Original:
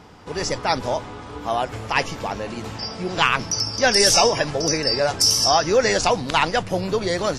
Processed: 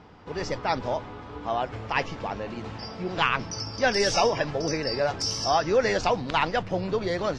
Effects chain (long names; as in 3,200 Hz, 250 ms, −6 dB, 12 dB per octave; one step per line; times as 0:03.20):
high-frequency loss of the air 150 metres
level −4 dB